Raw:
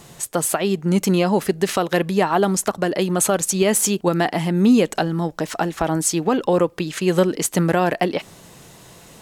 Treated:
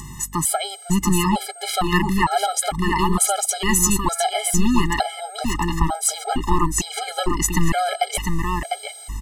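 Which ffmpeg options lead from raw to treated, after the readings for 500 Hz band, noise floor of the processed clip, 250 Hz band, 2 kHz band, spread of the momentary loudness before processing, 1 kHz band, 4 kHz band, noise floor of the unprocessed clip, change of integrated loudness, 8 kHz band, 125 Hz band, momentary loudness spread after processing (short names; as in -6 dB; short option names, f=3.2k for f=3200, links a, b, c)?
-8.0 dB, -39 dBFS, -3.5 dB, +1.0 dB, 6 LU, +2.5 dB, +3.0 dB, -46 dBFS, -1.5 dB, +2.5 dB, -1.0 dB, 7 LU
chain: -filter_complex "[0:a]aeval=exprs='val(0)+0.02*sin(2*PI*8400*n/s)':c=same,acrossover=split=650[a][b];[a]asoftclip=type=tanh:threshold=-19dB[c];[c][b]amix=inputs=2:normalize=0,aeval=exprs='val(0)+0.00501*(sin(2*PI*50*n/s)+sin(2*PI*2*50*n/s)/2+sin(2*PI*3*50*n/s)/3+sin(2*PI*4*50*n/s)/4+sin(2*PI*5*50*n/s)/5)':c=same,acompressor=mode=upward:threshold=-30dB:ratio=2.5,asubboost=boost=6:cutoff=53,aecho=1:1:1:0.89,aecho=1:1:701:0.596,afftfilt=real='re*gt(sin(2*PI*1.1*pts/sr)*(1-2*mod(floor(b*sr/1024/420),2)),0)':imag='im*gt(sin(2*PI*1.1*pts/sr)*(1-2*mod(floor(b*sr/1024/420),2)),0)':win_size=1024:overlap=0.75,volume=1.5dB"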